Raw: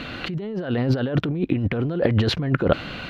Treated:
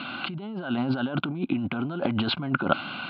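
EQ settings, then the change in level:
loudspeaker in its box 220–4,600 Hz, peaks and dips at 240 Hz +4 dB, 500 Hz +9 dB, 810 Hz +4 dB, 1,500 Hz +8 dB
phaser with its sweep stopped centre 1,800 Hz, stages 6
0.0 dB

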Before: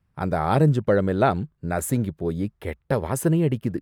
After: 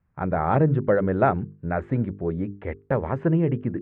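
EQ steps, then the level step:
low-pass filter 2,200 Hz 24 dB per octave
mains-hum notches 50/100/150/200/250/300/350/400/450 Hz
0.0 dB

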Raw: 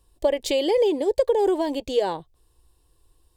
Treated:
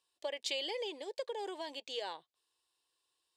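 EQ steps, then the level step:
high-pass filter 170 Hz 6 dB per octave
low-pass filter 3,500 Hz 12 dB per octave
first difference
+3.5 dB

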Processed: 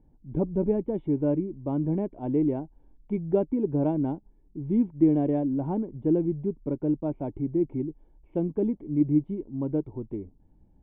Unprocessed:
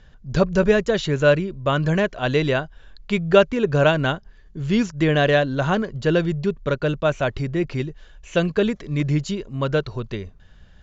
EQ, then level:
formant resonators in series u
low-pass with resonance 3,100 Hz, resonance Q 5.1
+4.0 dB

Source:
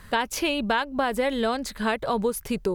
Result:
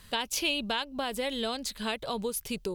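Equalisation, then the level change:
high shelf with overshoot 2,300 Hz +7.5 dB, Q 1.5
−8.0 dB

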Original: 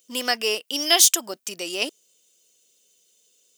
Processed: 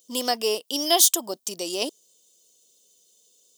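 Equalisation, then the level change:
flat-topped bell 1,900 Hz −11 dB 1.3 octaves
dynamic equaliser 5,600 Hz, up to −6 dB, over −30 dBFS, Q 0.89
+2.0 dB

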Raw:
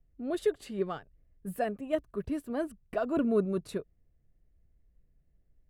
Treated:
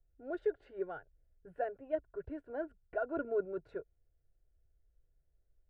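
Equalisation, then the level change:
low-pass with resonance 1,400 Hz, resonance Q 15
phaser with its sweep stopped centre 510 Hz, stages 4
−5.5 dB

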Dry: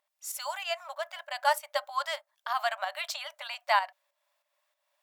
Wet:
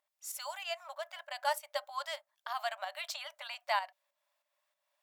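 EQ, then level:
dynamic equaliser 1,300 Hz, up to −4 dB, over −39 dBFS, Q 0.98
−4.5 dB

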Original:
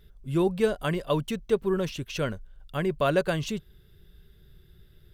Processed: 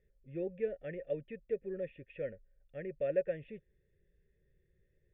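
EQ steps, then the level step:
formant resonators in series e
phaser with its sweep stopped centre 2,500 Hz, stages 4
+1.0 dB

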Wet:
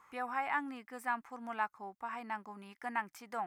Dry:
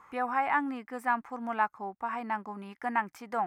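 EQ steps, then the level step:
high-shelf EQ 2,200 Hz +9.5 dB
−9.0 dB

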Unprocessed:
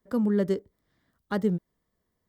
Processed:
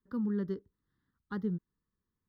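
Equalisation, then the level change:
high-shelf EQ 3,100 Hz −11.5 dB
phaser with its sweep stopped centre 2,400 Hz, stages 6
−6.0 dB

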